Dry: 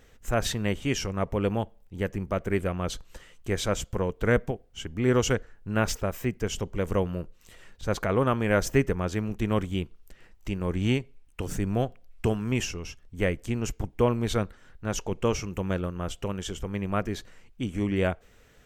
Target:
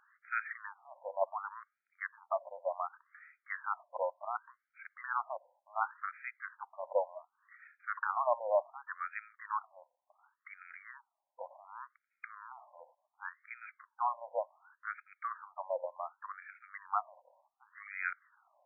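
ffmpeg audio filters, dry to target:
-af "lowpass=2.3k,afftfilt=real='re*between(b*sr/1024,720*pow(1800/720,0.5+0.5*sin(2*PI*0.68*pts/sr))/1.41,720*pow(1800/720,0.5+0.5*sin(2*PI*0.68*pts/sr))*1.41)':imag='im*between(b*sr/1024,720*pow(1800/720,0.5+0.5*sin(2*PI*0.68*pts/sr))/1.41,720*pow(1800/720,0.5+0.5*sin(2*PI*0.68*pts/sr))*1.41)':win_size=1024:overlap=0.75,volume=1dB"

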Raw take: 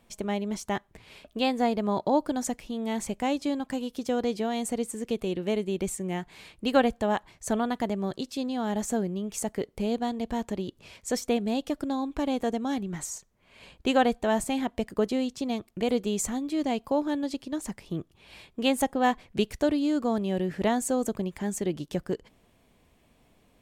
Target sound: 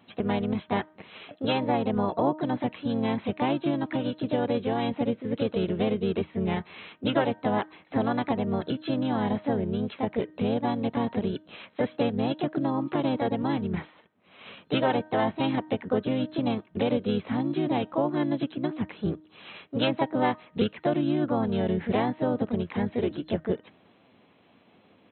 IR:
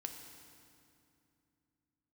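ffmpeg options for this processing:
-filter_complex "[0:a]afftfilt=real='re*between(b*sr/4096,160,3500)':imag='im*between(b*sr/4096,160,3500)':win_size=4096:overlap=0.75,asplit=4[a][b][c][d];[b]asetrate=22050,aresample=44100,atempo=2,volume=-8dB[e];[c]asetrate=35002,aresample=44100,atempo=1.25992,volume=-13dB[f];[d]asetrate=52444,aresample=44100,atempo=0.840896,volume=-4dB[g];[a][e][f][g]amix=inputs=4:normalize=0,acompressor=threshold=-28dB:ratio=2.5,bandreject=f=310.3:t=h:w=4,bandreject=f=620.6:t=h:w=4,bandreject=f=930.9:t=h:w=4,bandreject=f=1.2412k:t=h:w=4,bandreject=f=1.5515k:t=h:w=4,bandreject=f=1.8618k:t=h:w=4,atempo=0.94,volume=4dB"

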